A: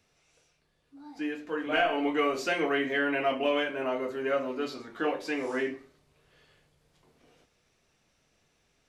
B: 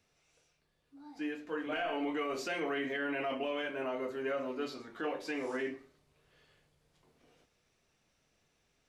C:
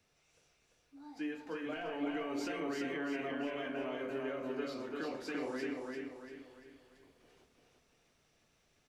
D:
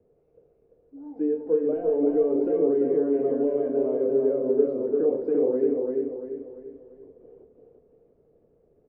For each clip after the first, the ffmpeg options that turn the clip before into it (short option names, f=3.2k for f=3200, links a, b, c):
-af "alimiter=limit=-22.5dB:level=0:latency=1:release=30,volume=-4.5dB"
-filter_complex "[0:a]acrossover=split=300[a][b];[b]acompressor=threshold=-41dB:ratio=6[c];[a][c]amix=inputs=2:normalize=0,aecho=1:1:343|686|1029|1372|1715:0.708|0.297|0.125|0.0525|0.022"
-af "lowpass=f=460:t=q:w=4.9,volume=8dB"